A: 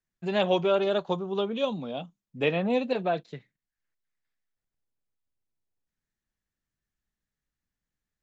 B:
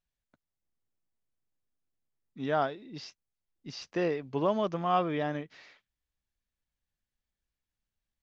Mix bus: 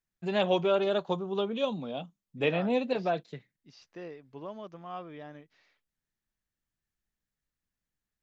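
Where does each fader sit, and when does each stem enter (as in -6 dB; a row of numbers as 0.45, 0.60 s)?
-2.0, -13.5 dB; 0.00, 0.00 s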